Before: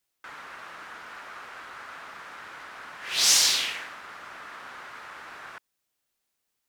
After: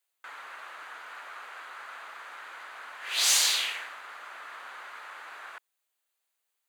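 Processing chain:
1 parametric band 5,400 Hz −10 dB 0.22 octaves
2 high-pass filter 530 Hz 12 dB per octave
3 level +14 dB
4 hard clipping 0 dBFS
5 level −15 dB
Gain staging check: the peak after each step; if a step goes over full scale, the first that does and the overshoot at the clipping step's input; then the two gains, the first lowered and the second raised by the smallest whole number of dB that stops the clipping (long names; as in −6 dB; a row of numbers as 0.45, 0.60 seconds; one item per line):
−8.0, −8.0, +6.0, 0.0, −15.0 dBFS
step 3, 6.0 dB
step 3 +8 dB, step 5 −9 dB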